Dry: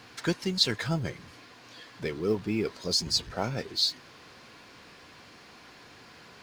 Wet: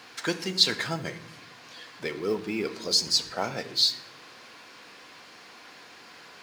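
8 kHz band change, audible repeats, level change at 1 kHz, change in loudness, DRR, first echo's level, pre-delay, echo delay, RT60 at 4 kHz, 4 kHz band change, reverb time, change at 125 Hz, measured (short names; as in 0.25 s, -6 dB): +3.5 dB, none, +3.0 dB, +2.5 dB, 10.0 dB, none, 4 ms, none, 0.55 s, +3.5 dB, 0.75 s, -6.0 dB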